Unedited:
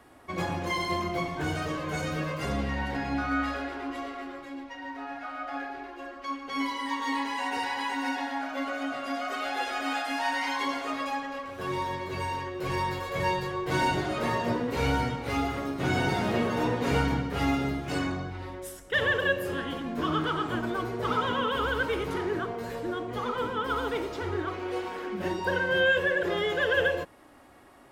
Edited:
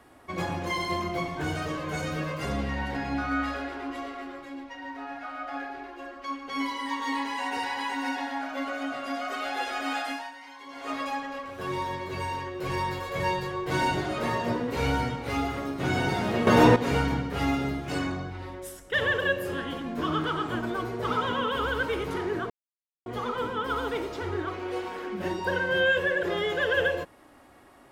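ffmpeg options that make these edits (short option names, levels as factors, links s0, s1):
-filter_complex "[0:a]asplit=7[s0][s1][s2][s3][s4][s5][s6];[s0]atrim=end=10.37,asetpts=PTS-STARTPTS,afade=t=out:st=10.09:d=0.28:c=qua:silence=0.158489[s7];[s1]atrim=start=10.37:end=10.63,asetpts=PTS-STARTPTS,volume=0.158[s8];[s2]atrim=start=10.63:end=16.472,asetpts=PTS-STARTPTS,afade=t=in:d=0.28:c=qua:silence=0.158489[s9];[s3]atrim=start=16.468:end=16.762,asetpts=PTS-STARTPTS,volume=3.35[s10];[s4]atrim=start=16.758:end=22.5,asetpts=PTS-STARTPTS,afade=t=out:st=5.738:d=0.004:c=hsin[s11];[s5]atrim=start=22.5:end=23.06,asetpts=PTS-STARTPTS,volume=0[s12];[s6]atrim=start=23.06,asetpts=PTS-STARTPTS,afade=t=in:d=0.004:c=hsin[s13];[s7][s8][s9]concat=n=3:v=0:a=1[s14];[s14][s10]acrossfade=d=0.004:c1=hsin:c2=hsin[s15];[s11][s12][s13]concat=n=3:v=0:a=1[s16];[s15][s16]acrossfade=d=0.004:c1=hsin:c2=hsin"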